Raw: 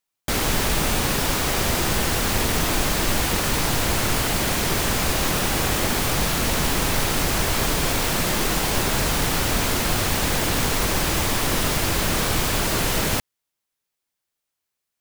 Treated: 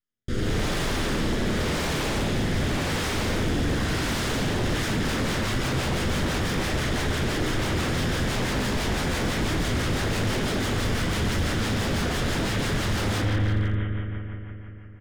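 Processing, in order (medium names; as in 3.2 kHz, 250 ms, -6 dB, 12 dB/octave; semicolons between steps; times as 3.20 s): comb filter that takes the minimum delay 0.59 ms; distance through air 77 m; doubling 38 ms -5 dB; bucket-brigade echo 86 ms, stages 2048, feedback 85%, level -3 dB; rotary cabinet horn 0.9 Hz, later 6 Hz, at 4.44 s; level rider gain up to 4 dB; chord resonator E2 major, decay 0.24 s; wavefolder -29.5 dBFS; bass shelf 450 Hz +7.5 dB; trim +5 dB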